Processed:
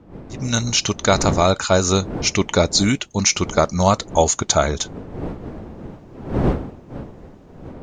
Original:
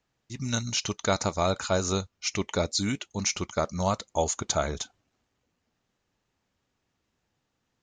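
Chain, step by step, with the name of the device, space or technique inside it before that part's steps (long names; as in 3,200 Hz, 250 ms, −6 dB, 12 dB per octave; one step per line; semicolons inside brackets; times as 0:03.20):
smartphone video outdoors (wind on the microphone 340 Hz −41 dBFS; automatic gain control gain up to 14 dB; AAC 128 kbit/s 48,000 Hz)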